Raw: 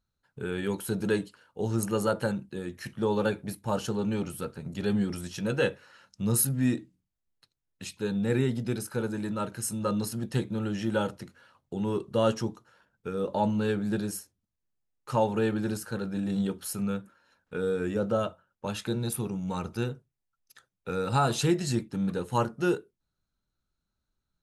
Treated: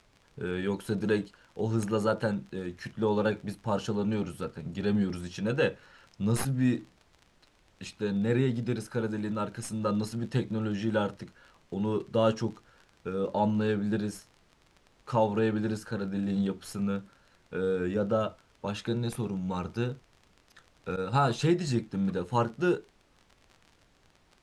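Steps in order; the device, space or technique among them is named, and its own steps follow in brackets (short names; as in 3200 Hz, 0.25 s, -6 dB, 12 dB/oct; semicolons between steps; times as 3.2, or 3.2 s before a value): record under a worn stylus (tracing distortion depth 0.024 ms; crackle 33/s -38 dBFS; pink noise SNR 33 dB); 20.96–21.42 expander -26 dBFS; air absorption 67 m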